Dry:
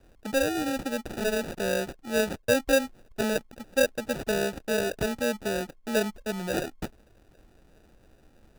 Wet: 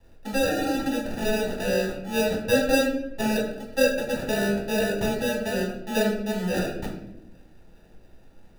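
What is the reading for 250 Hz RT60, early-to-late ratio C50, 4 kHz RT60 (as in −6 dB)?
1.2 s, 5.0 dB, 0.55 s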